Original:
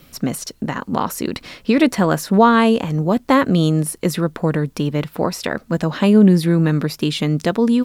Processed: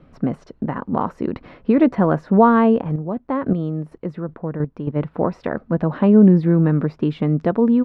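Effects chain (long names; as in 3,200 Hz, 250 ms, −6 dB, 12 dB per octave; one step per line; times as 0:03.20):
low-pass filter 1,200 Hz 12 dB per octave
0:02.81–0:04.95: square-wave tremolo 1.4 Hz → 4.1 Hz, depth 60%, duty 15%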